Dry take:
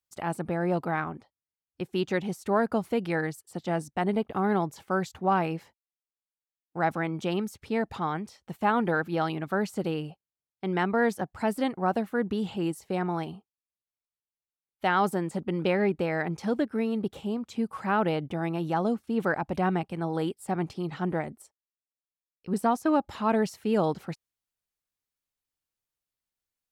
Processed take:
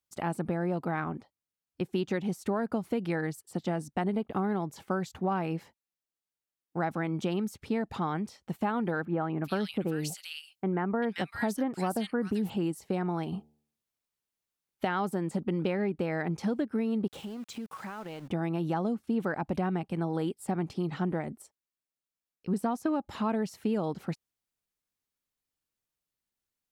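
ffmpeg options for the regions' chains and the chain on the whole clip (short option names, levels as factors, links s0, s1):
-filter_complex "[0:a]asettb=1/sr,asplit=3[s0][s1][s2];[s0]atrim=end=9.054[s3];[s1]atrim=start=9.05:end=12.5,asetpts=PTS-STARTPTS,afade=t=in:d=0.004:c=qsin,afade=t=out:st=3.446:d=0.004:c=qsin,highshelf=f=2800:g=9,acrossover=split=1900[s4][s5];[s5]adelay=390[s6];[s4][s6]amix=inputs=2:normalize=0,atrim=end_sample=152145[s7];[s2]atrim=start=12.496[s8];[s3][s7]acrossfade=d=0.004:c1=hsin:c2=qsin[s9];[s9][s8]acrossfade=d=0.004:c1=qsin:c2=hsin,asettb=1/sr,asplit=3[s10][s11][s12];[s10]atrim=end=13.324[s13];[s11]atrim=start=13.32:end=14.85,asetpts=PTS-STARTPTS,afade=t=in:d=0.004:c=qsin,afade=t=out:st=1.526:d=0.004:c=qsin,acontrast=46,bandreject=f=75.31:t=h:w=4,bandreject=f=150.62:t=h:w=4,bandreject=f=225.93:t=h:w=4,bandreject=f=301.24:t=h:w=4,bandreject=f=376.55:t=h:w=4,bandreject=f=451.86:t=h:w=4,bandreject=f=527.17:t=h:w=4,bandreject=f=602.48:t=h:w=4,bandreject=f=677.79:t=h:w=4,bandreject=f=753.1:t=h:w=4,bandreject=f=828.41:t=h:w=4,bandreject=f=903.72:t=h:w=4[s14];[s12]atrim=start=14.846[s15];[s13][s14]acrossfade=d=0.004:c1=hsin:c2=qsin[s16];[s16][s15]acrossfade=d=0.004:c1=qsin:c2=hsin,asettb=1/sr,asplit=3[s17][s18][s19];[s17]atrim=end=17.074[s20];[s18]atrim=start=17.07:end=18.28,asetpts=PTS-STARTPTS,afade=t=in:d=0.004:c=qsin,afade=t=out:st=1.206:d=0.004:c=qsin,tiltshelf=f=710:g=-4,acompressor=threshold=0.0112:ratio=6:attack=3.2:release=140:knee=1:detection=peak,aeval=exprs='val(0)*gte(abs(val(0)),0.00299)':c=same[s21];[s19]atrim=start=18.276[s22];[s20][s21]acrossfade=d=0.004:c1=hsin:c2=qsin[s23];[s23][s22]acrossfade=d=0.004:c1=qsin:c2=hsin,equalizer=f=220:t=o:w=1.6:g=4.5,acompressor=threshold=0.0501:ratio=6"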